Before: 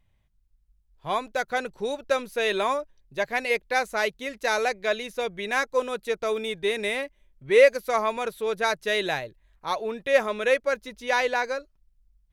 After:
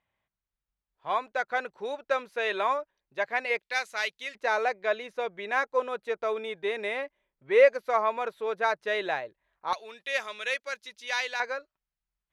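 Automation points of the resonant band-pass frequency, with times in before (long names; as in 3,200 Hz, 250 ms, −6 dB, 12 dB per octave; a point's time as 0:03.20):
resonant band-pass, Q 0.7
1,200 Hz
from 0:03.59 3,200 Hz
from 0:04.35 960 Hz
from 0:09.73 4,000 Hz
from 0:11.40 1,400 Hz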